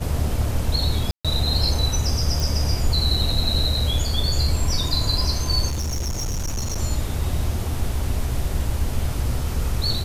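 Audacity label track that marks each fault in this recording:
1.110000	1.250000	gap 0.136 s
2.400000	2.400000	pop
5.690000	6.780000	clipped -22 dBFS

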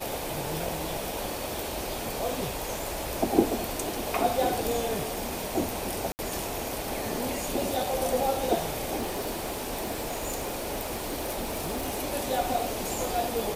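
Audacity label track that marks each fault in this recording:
6.120000	6.190000	gap 69 ms
8.970000	11.990000	clipped -26.5 dBFS

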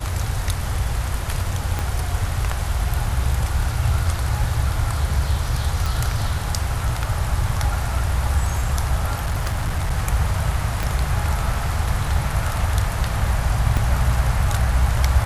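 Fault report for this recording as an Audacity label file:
1.790000	1.790000	pop -10 dBFS
5.860000	5.860000	pop
9.240000	9.930000	clipped -17.5 dBFS
10.830000	10.830000	pop
13.770000	13.770000	gap 2.1 ms

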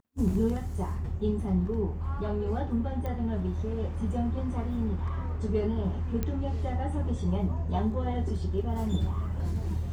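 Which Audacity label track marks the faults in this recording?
3.060000	3.060000	pop -24 dBFS
6.230000	6.230000	pop -17 dBFS

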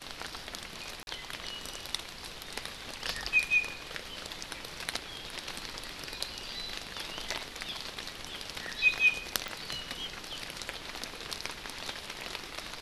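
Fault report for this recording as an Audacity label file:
1.030000	1.070000	gap 41 ms
9.480000	9.480000	pop

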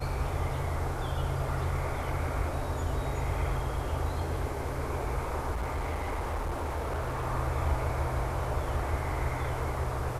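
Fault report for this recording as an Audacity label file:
5.510000	7.260000	clipped -28.5 dBFS

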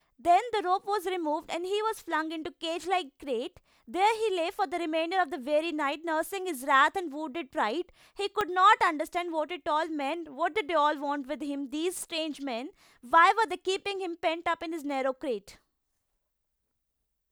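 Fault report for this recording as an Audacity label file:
8.410000	8.410000	pop -15 dBFS

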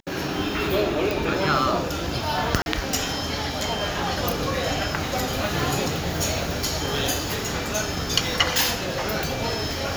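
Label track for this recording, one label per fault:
1.110000	1.110000	pop
2.620000	2.660000	gap 41 ms

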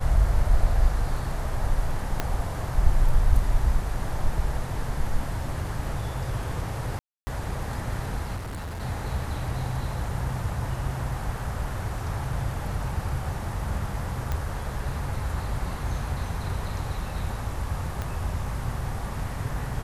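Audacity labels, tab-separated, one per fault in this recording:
2.200000	2.200000	pop -10 dBFS
6.990000	7.270000	gap 0.28 s
8.360000	8.820000	clipped -31 dBFS
14.320000	14.320000	pop -15 dBFS
18.020000	18.020000	pop -17 dBFS

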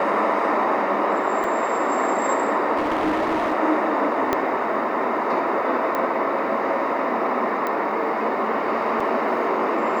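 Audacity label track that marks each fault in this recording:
1.440000	1.440000	gap 3.4 ms
2.760000	3.540000	clipped -18 dBFS
4.330000	4.330000	pop -7 dBFS
5.950000	5.950000	pop -12 dBFS
7.670000	7.670000	pop -13 dBFS
9.000000	9.000000	gap 4.6 ms

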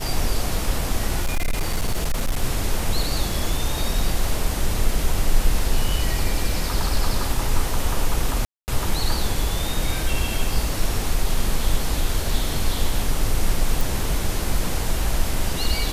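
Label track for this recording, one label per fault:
1.220000	2.420000	clipped -17 dBFS
8.450000	8.680000	gap 0.229 s
13.810000	13.810000	pop

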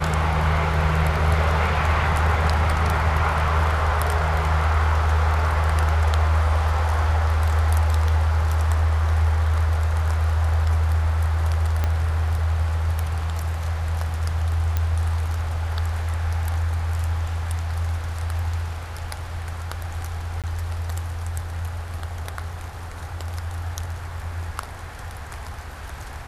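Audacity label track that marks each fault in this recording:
11.840000	11.840000	pop -10 dBFS
14.770000	14.770000	pop -10 dBFS
20.420000	20.440000	gap 17 ms

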